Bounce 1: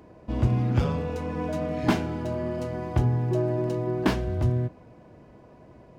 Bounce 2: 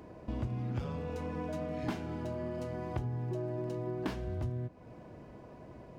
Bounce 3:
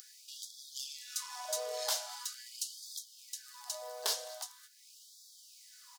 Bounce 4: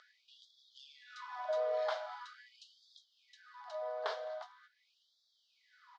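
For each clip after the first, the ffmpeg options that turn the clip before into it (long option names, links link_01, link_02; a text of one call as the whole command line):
ffmpeg -i in.wav -af "acompressor=threshold=-37dB:ratio=3" out.wav
ffmpeg -i in.wav -af "aexciter=amount=6.5:drive=9.3:freq=3700,aecho=1:1:210:0.0794,afftfilt=real='re*gte(b*sr/1024,420*pow(3300/420,0.5+0.5*sin(2*PI*0.43*pts/sr)))':imag='im*gte(b*sr/1024,420*pow(3300/420,0.5+0.5*sin(2*PI*0.43*pts/sr)))':win_size=1024:overlap=0.75,volume=1dB" out.wav
ffmpeg -i in.wav -af "highpass=370,equalizer=frequency=630:width_type=q:width=4:gain=6,equalizer=frequency=1300:width_type=q:width=4:gain=6,equalizer=frequency=2700:width_type=q:width=4:gain=-9,lowpass=frequency=2900:width=0.5412,lowpass=frequency=2900:width=1.3066,volume=1dB" out.wav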